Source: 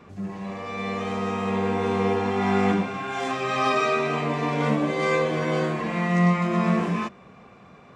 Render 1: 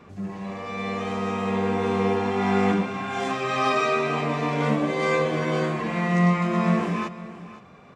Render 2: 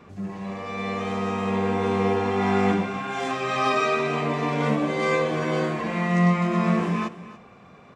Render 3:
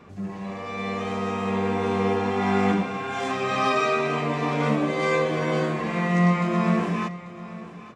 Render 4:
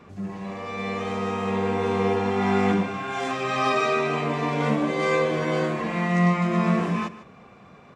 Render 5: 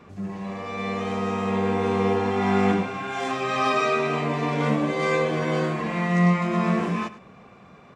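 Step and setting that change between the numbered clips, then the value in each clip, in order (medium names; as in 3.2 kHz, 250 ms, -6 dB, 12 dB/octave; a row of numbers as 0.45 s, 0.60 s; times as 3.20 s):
delay, time: 515 ms, 286 ms, 841 ms, 151 ms, 102 ms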